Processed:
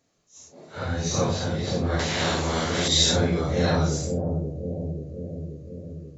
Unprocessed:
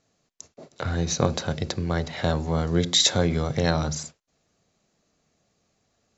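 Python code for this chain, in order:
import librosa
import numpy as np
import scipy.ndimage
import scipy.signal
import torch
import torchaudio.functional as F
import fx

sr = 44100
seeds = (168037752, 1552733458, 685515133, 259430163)

y = fx.phase_scramble(x, sr, seeds[0], window_ms=200)
y = fx.echo_bbd(y, sr, ms=533, stages=2048, feedback_pct=66, wet_db=-4)
y = fx.spectral_comp(y, sr, ratio=2.0, at=(1.99, 2.88))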